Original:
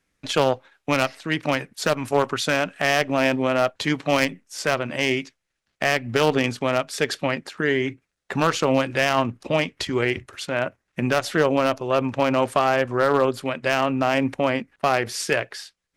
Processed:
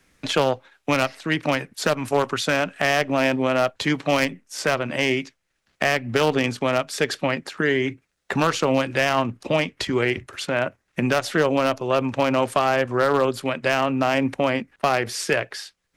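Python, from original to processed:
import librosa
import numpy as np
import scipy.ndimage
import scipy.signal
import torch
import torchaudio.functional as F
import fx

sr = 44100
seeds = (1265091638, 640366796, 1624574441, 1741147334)

y = fx.band_squash(x, sr, depth_pct=40)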